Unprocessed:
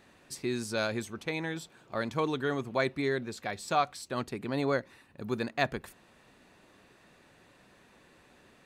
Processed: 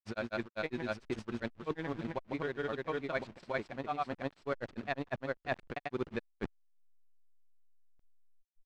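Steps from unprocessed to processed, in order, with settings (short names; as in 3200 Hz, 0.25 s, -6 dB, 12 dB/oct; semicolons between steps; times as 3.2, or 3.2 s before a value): level-crossing sampler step -40 dBFS; grains, spray 0.788 s; in parallel at -4 dB: companded quantiser 4-bit; on the sum: LPF 3200 Hz 12 dB/oct; transient shaper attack +5 dB, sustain -6 dB; reverse; compressor 6:1, threshold -40 dBFS, peak gain reduction 22.5 dB; reverse; gain +5.5 dB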